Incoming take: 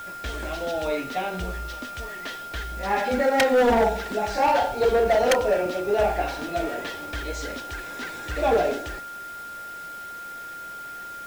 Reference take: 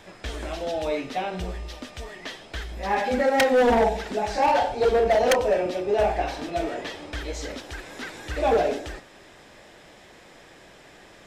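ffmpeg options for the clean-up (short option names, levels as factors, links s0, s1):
-af "bandreject=f=1400:w=30,afwtdn=0.0032"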